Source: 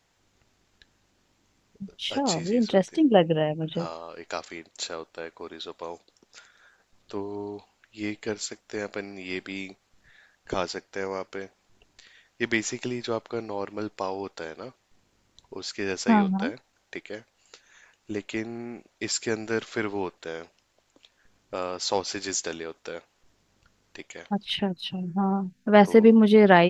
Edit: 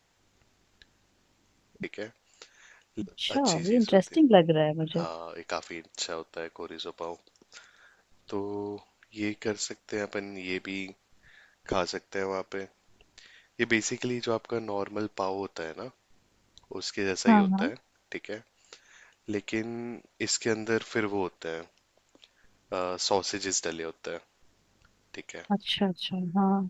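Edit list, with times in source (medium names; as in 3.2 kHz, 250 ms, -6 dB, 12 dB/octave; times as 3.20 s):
16.95–18.14 s: copy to 1.83 s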